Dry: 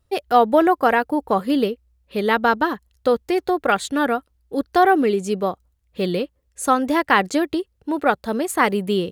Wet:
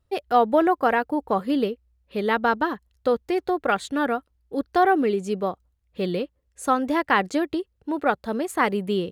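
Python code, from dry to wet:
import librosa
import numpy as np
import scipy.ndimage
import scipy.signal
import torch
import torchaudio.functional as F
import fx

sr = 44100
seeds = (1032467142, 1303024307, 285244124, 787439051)

y = fx.high_shelf(x, sr, hz=5100.0, db=-6.5)
y = F.gain(torch.from_numpy(y), -3.5).numpy()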